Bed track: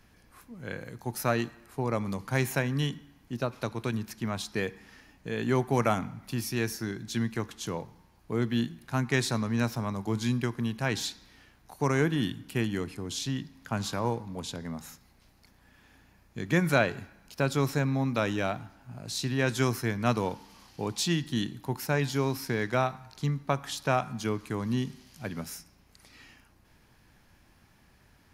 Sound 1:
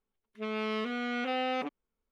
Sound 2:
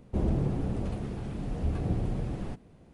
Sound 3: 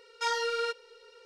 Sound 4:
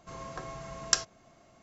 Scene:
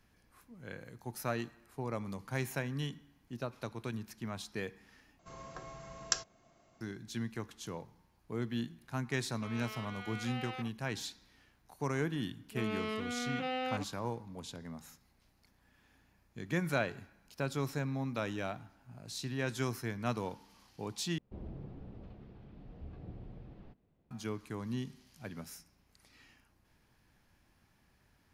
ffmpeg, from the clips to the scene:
-filter_complex "[1:a]asplit=2[a][b];[0:a]volume=-8.5dB[c];[a]highpass=780[d];[2:a]lowpass=f=4.5k:w=0.5412,lowpass=f=4.5k:w=1.3066[e];[c]asplit=3[f][g][h];[f]atrim=end=5.194[i];[4:a]atrim=end=1.62,asetpts=PTS-STARTPTS,volume=-6.5dB[j];[g]atrim=start=6.806:end=21.184[k];[e]atrim=end=2.93,asetpts=PTS-STARTPTS,volume=-18dB[l];[h]atrim=start=24.106[m];[d]atrim=end=2.11,asetpts=PTS-STARTPTS,volume=-8.5dB,afade=t=in:d=0.004:c=hsin,afade=t=out:st=2.106:d=0.004:c=hsin,adelay=9000[n];[b]atrim=end=2.11,asetpts=PTS-STARTPTS,volume=-4.5dB,afade=t=in:d=0.004:c=hsin,afade=t=out:st=2.106:d=0.004:c=hsin,adelay=12150[o];[i][j]acrossfade=d=0.004:c1=hsin:c2=hsin[p];[p][k]acrossfade=d=0.004:c1=hsin:c2=hsin[q];[q][l]acrossfade=d=0.004:c1=hsin:c2=hsin[r];[r][m]acrossfade=d=0.004:c1=hsin:c2=hsin[s];[s][n][o]amix=inputs=3:normalize=0"

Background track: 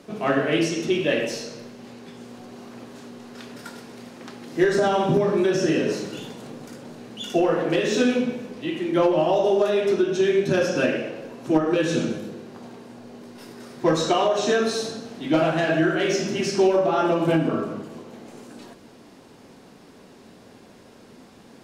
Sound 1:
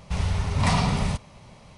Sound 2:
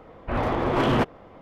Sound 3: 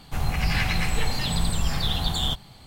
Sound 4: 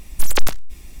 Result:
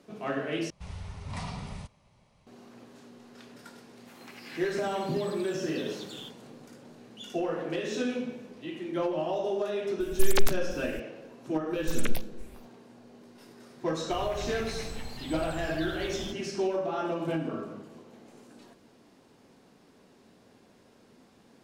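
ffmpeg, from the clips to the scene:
-filter_complex "[3:a]asplit=2[a][b];[4:a]asplit=2[c][d];[0:a]volume=-10.5dB[e];[a]highpass=950[f];[d]asplit=2[g][h];[h]afreqshift=2.4[i];[g][i]amix=inputs=2:normalize=1[j];[e]asplit=2[k][l];[k]atrim=end=0.704[m];[1:a]atrim=end=1.77,asetpts=PTS-STARTPTS,volume=-15.5dB[n];[l]atrim=start=2.466[o];[f]atrim=end=2.66,asetpts=PTS-STARTPTS,volume=-17.5dB,afade=t=in:d=0.004:c=hsin,afade=t=out:st=2.656:d=0.004:c=hsin,adelay=3950[p];[c]atrim=end=1,asetpts=PTS-STARTPTS,volume=-6.5dB,afade=t=in:d=0.004:c=hsin,afade=t=out:st=0.996:d=0.004:c=hsin,adelay=10000[q];[j]atrim=end=1,asetpts=PTS-STARTPTS,volume=-9.5dB,afade=t=in:d=0.1,afade=t=out:st=0.9:d=0.1,adelay=11680[r];[b]atrim=end=2.66,asetpts=PTS-STARTPTS,volume=-15.5dB,afade=t=in:d=0.004:c=hsin,afade=t=out:st=2.656:d=0.004:c=hsin,adelay=13980[s];[m][n]acrossfade=d=0.004:c1=hsin:c2=hsin[t];[t][o]acrossfade=d=0.004:c1=hsin:c2=hsin[u];[u][p][q][r][s]amix=inputs=5:normalize=0"

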